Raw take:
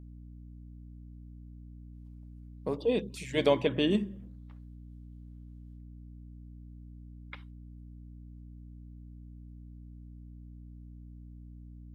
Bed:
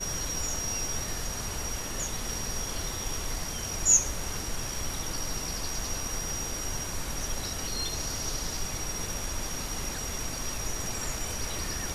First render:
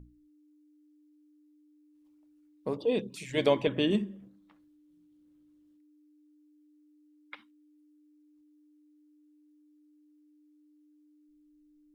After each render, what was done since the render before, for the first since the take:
mains-hum notches 60/120/180/240 Hz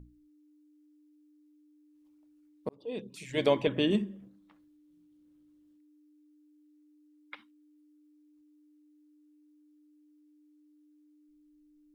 0:02.69–0:03.75: fade in equal-power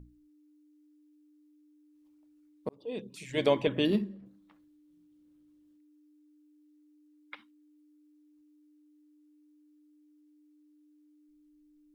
0:03.85–0:04.26: linearly interpolated sample-rate reduction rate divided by 6×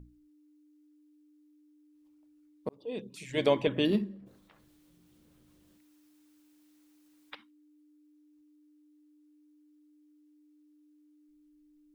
0:04.26–0:07.34: ceiling on every frequency bin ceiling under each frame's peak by 20 dB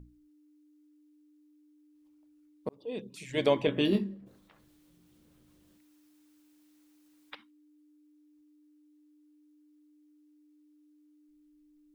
0:03.66–0:04.14: double-tracking delay 21 ms −6 dB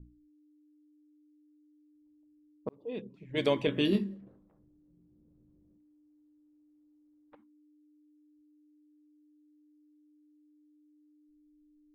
low-pass that shuts in the quiet parts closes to 350 Hz, open at −28 dBFS
dynamic equaliser 730 Hz, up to −5 dB, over −41 dBFS, Q 1.4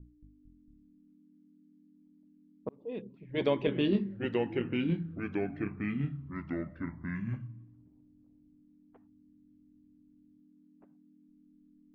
delay with pitch and tempo change per echo 226 ms, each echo −3 semitones, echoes 3
high-frequency loss of the air 240 metres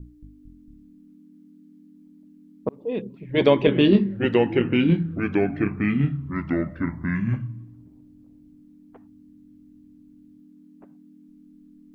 level +11.5 dB

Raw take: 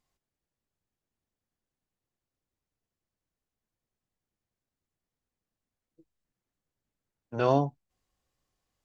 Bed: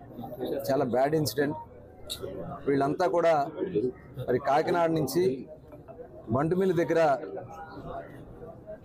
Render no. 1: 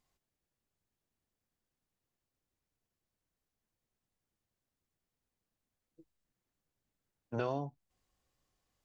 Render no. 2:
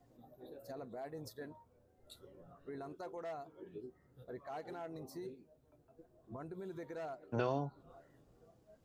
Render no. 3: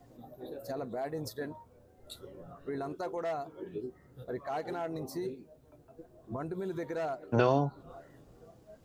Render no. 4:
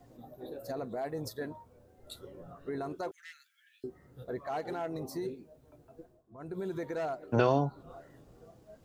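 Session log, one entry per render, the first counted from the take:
downward compressor 6 to 1, threshold −32 dBFS, peak gain reduction 13.5 dB
mix in bed −21 dB
level +9.5 dB
0:03.11–0:03.84: Butterworth high-pass 1,600 Hz 72 dB per octave; 0:06.00–0:06.58: duck −17 dB, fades 0.24 s

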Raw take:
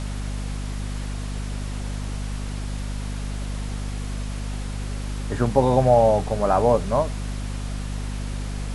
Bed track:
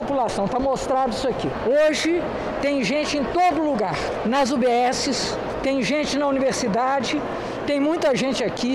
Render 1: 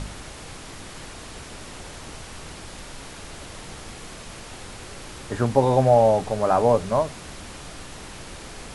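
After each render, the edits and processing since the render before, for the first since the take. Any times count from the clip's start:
hum removal 50 Hz, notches 5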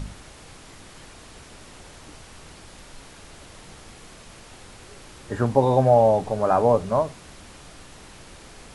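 noise reduction from a noise print 6 dB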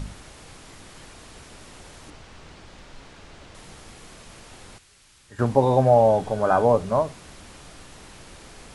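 0:02.10–0:03.55: high-frequency loss of the air 76 metres
0:04.78–0:05.39: guitar amp tone stack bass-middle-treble 5-5-5
0:06.08–0:06.65: hollow resonant body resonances 1,500/3,300 Hz, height 12 dB → 16 dB, ringing for 90 ms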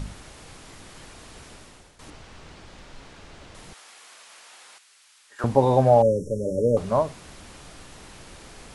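0:01.50–0:01.99: fade out, to −13.5 dB
0:03.73–0:05.44: high-pass filter 880 Hz
0:06.02–0:06.77: linear-phase brick-wall band-stop 590–5,300 Hz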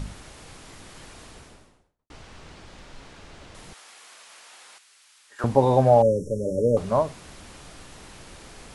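0:01.20–0:02.10: fade out and dull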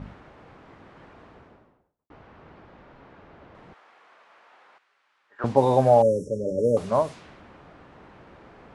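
high-pass filter 140 Hz 6 dB per octave
low-pass that shuts in the quiet parts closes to 1,300 Hz, open at −18.5 dBFS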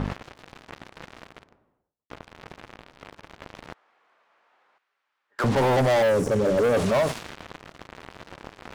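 leveller curve on the samples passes 5
brickwall limiter −17.5 dBFS, peak gain reduction 12 dB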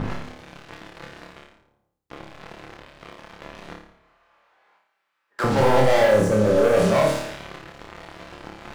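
flutter between parallel walls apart 4.8 metres, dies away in 0.56 s
rectangular room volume 930 cubic metres, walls furnished, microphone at 0.77 metres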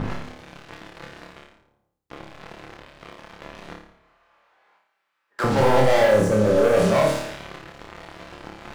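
no processing that can be heard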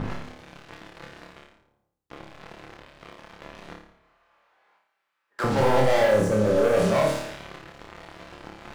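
level −3 dB

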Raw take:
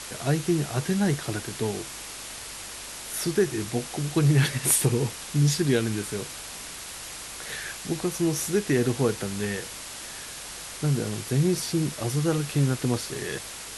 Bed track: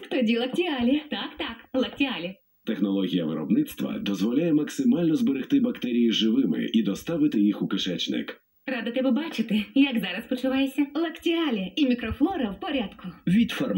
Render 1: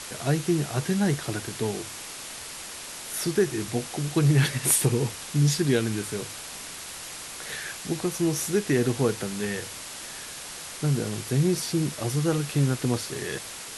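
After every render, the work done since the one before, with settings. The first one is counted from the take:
hum removal 50 Hz, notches 2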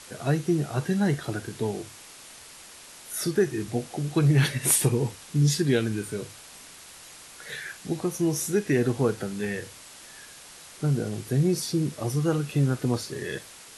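noise reduction from a noise print 8 dB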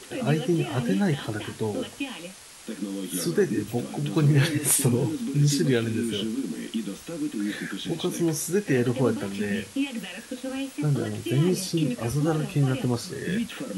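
mix in bed track −7.5 dB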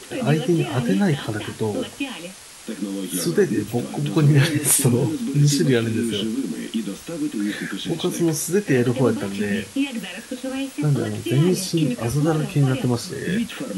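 level +4.5 dB

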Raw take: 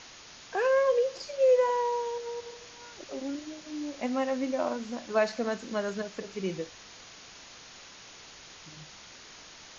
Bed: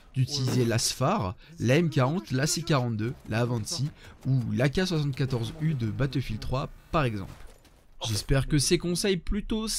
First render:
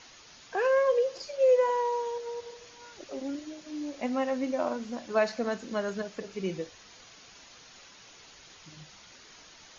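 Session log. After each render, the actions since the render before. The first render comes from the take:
broadband denoise 6 dB, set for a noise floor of −50 dBFS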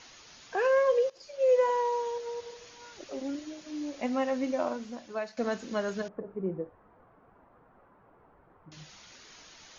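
0:01.10–0:01.60: fade in, from −18 dB
0:04.56–0:05.37: fade out, to −15 dB
0:06.08–0:08.72: low-pass filter 1,200 Hz 24 dB per octave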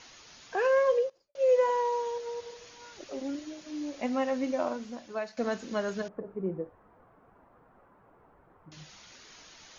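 0:00.89–0:01.35: fade out and dull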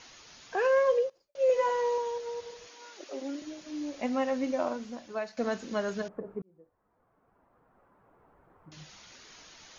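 0:01.48–0:01.98: double-tracking delay 15 ms −3.5 dB
0:02.67–0:03.42: high-pass filter 260 Hz 24 dB per octave
0:06.42–0:08.82: fade in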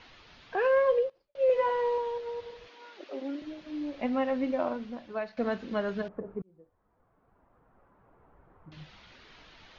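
low-pass filter 3,900 Hz 24 dB per octave
low-shelf EQ 95 Hz +10 dB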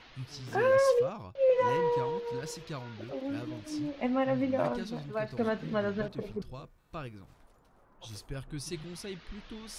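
mix in bed −15.5 dB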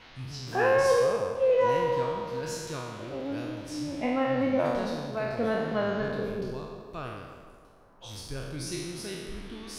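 peak hold with a decay on every bin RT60 1.24 s
tape delay 162 ms, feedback 66%, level −9.5 dB, low-pass 2,200 Hz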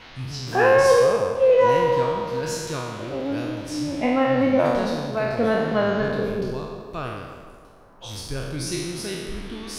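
level +7 dB

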